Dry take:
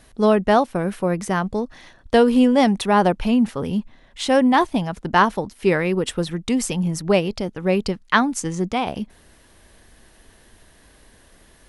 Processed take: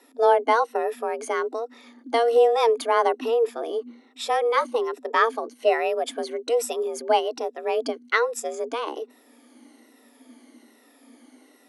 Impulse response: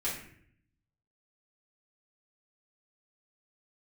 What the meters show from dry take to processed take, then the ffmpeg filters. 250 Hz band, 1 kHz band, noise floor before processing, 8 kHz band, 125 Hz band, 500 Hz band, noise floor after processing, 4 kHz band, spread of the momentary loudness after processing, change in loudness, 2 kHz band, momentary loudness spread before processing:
-19.5 dB, -2.0 dB, -53 dBFS, -5.5 dB, under -40 dB, -0.5 dB, -57 dBFS, -4.5 dB, 12 LU, -4.0 dB, -4.0 dB, 10 LU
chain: -af "afftfilt=real='re*pow(10,11/40*sin(2*PI*(1.8*log(max(b,1)*sr/1024/100)/log(2)-(-1.2)*(pts-256)/sr)))':imag='im*pow(10,11/40*sin(2*PI*(1.8*log(max(b,1)*sr/1024/100)/log(2)-(-1.2)*(pts-256)/sr)))':win_size=1024:overlap=0.75,afreqshift=230,lowshelf=f=290:g=8.5,volume=-7dB"

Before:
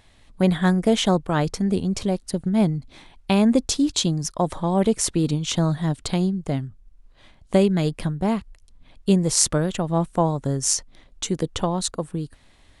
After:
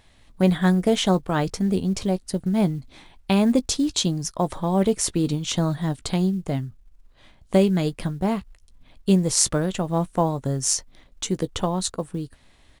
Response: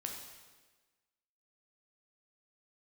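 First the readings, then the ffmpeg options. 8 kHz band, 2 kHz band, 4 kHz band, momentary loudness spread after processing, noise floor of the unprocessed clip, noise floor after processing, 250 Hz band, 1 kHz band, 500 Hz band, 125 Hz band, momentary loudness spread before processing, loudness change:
-1.0 dB, -1.0 dB, -1.0 dB, 10 LU, -55 dBFS, -56 dBFS, -0.5 dB, -1.0 dB, -0.5 dB, -1.0 dB, 10 LU, -0.5 dB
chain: -filter_complex "[0:a]acrusher=bits=9:mode=log:mix=0:aa=0.000001,asplit=2[a][b];[b]adelay=16,volume=-14dB[c];[a][c]amix=inputs=2:normalize=0,volume=-1dB"

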